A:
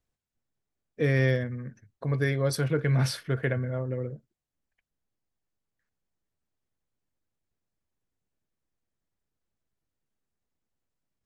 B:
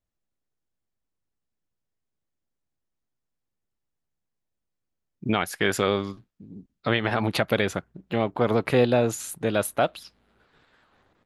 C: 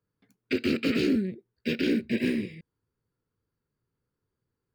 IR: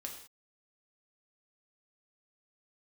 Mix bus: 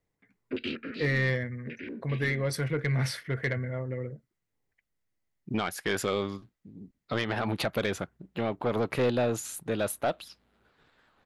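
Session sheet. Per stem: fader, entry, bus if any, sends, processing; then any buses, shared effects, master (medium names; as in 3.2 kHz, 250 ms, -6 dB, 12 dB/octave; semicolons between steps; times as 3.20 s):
-2.5 dB, 0.00 s, no send, peaking EQ 2 kHz +12.5 dB 0.3 oct
-3.5 dB, 0.25 s, no send, none
-2.5 dB, 0.00 s, no send, step-sequenced low-pass 5.3 Hz 780–4200 Hz; auto duck -13 dB, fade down 0.60 s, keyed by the first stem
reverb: none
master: saturation -19 dBFS, distortion -14 dB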